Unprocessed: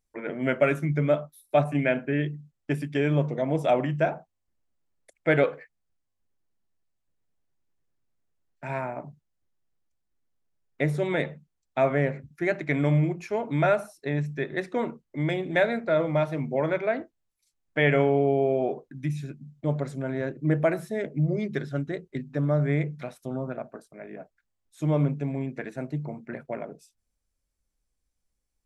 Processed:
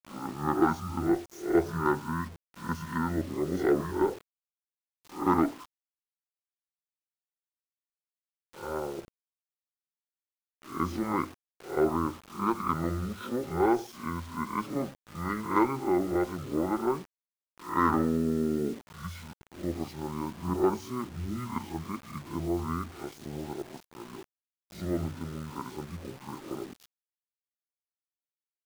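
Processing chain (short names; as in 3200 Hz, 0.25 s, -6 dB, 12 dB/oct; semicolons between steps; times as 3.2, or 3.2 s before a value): spectral swells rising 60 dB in 0.40 s; HPF 650 Hz 6 dB/oct; pitch shift -9.5 st; added harmonics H 8 -34 dB, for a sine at -10.5 dBFS; bit-crush 8-bit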